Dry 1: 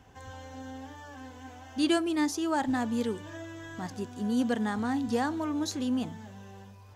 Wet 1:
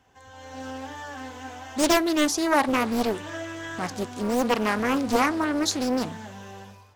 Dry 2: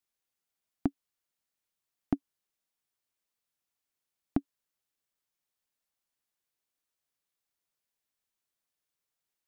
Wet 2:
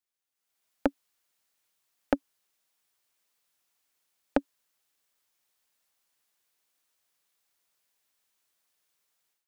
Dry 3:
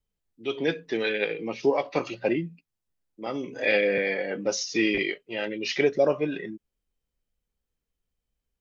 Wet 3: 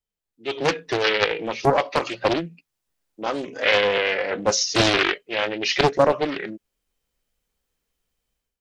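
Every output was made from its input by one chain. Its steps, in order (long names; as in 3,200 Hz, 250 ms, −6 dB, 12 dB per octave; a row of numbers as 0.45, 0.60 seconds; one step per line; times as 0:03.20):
low-shelf EQ 320 Hz −8.5 dB
automatic gain control gain up to 13.5 dB
highs frequency-modulated by the lows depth 0.79 ms
level −3 dB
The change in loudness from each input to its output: +5.5, +3.5, +5.0 LU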